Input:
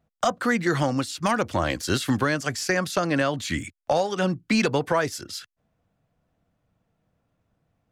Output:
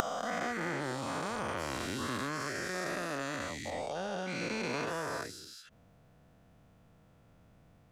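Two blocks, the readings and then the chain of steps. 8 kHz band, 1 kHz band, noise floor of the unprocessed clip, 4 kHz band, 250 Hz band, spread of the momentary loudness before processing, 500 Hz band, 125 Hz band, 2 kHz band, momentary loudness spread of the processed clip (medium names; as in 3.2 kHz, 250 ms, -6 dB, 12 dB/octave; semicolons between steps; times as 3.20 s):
-10.0 dB, -10.0 dB, -75 dBFS, -10.5 dB, -13.5 dB, 6 LU, -12.0 dB, -14.0 dB, -9.5 dB, 4 LU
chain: every event in the spectrogram widened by 480 ms; inverted gate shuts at -20 dBFS, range -24 dB; trim +3 dB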